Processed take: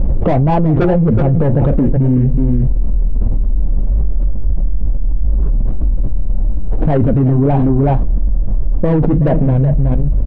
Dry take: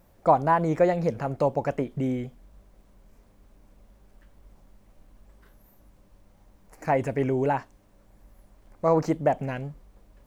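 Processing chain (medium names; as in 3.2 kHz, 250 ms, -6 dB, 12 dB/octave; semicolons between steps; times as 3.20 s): median filter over 25 samples; low-pass 3.6 kHz 12 dB/octave; saturation -23 dBFS, distortion -10 dB; formant shift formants -2 st; tilt EQ -4.5 dB/octave; delay 373 ms -12.5 dB; flange 1.7 Hz, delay 3 ms, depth 6.8 ms, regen -46%; loudness maximiser +21 dB; level flattener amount 100%; trim -6.5 dB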